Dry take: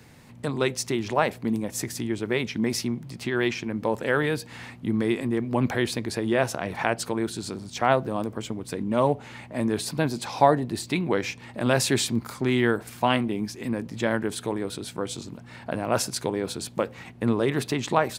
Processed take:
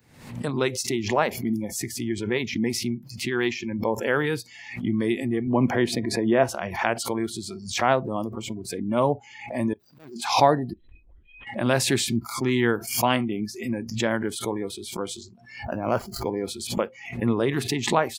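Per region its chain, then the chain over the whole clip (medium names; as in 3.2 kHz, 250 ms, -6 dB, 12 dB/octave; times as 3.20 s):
5.47–6.49 s: high-pass 160 Hz + tilt EQ -2 dB/octave + small resonant body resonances 680/990/1900 Hz, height 6 dB, ringing for 95 ms
9.73–10.16 s: median filter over 41 samples + bass shelf 430 Hz -10 dB + slow attack 249 ms
10.73–11.47 s: compression 2.5:1, threshold -35 dBFS + inharmonic resonator 290 Hz, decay 0.25 s, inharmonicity 0.03 + LPC vocoder at 8 kHz whisper
15.64–16.43 s: median filter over 15 samples + peaking EQ 5.4 kHz -4 dB 1.5 oct + upward compressor, threshold -31 dBFS
whole clip: spectral noise reduction 24 dB; swell ahead of each attack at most 86 dB/s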